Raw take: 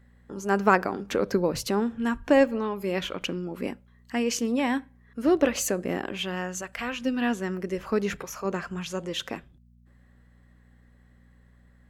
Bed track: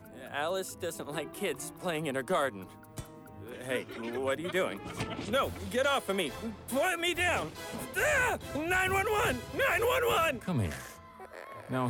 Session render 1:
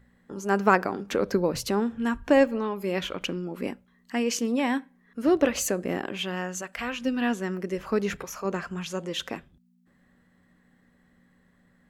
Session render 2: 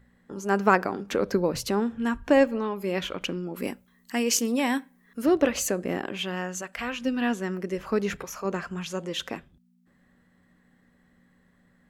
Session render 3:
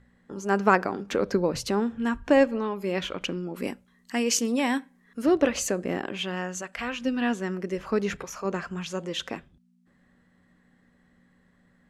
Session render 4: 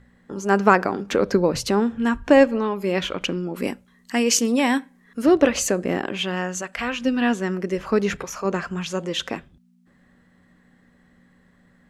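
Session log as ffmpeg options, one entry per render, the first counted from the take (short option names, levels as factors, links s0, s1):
-af "bandreject=f=60:t=h:w=4,bandreject=f=120:t=h:w=4"
-filter_complex "[0:a]asettb=1/sr,asplit=3[s0][s1][s2];[s0]atrim=end=3.564[s3];[s1]atrim=start=3.56:end=5.26,asetpts=PTS-STARTPTS,afade=t=in:d=0.004:c=qsin,afade=t=out:st=1.696:d=0.004:c=qsin,aemphasis=mode=production:type=50kf[s4];[s2]atrim=start=5.256[s5];[s3][s4]acrossfade=d=0.004:c1=hsin:c2=qsin[s6];[s6][s5]acrossfade=d=0.004:c1=qsin:c2=hsin"
-af "lowpass=9600"
-af "volume=1.88,alimiter=limit=0.794:level=0:latency=1"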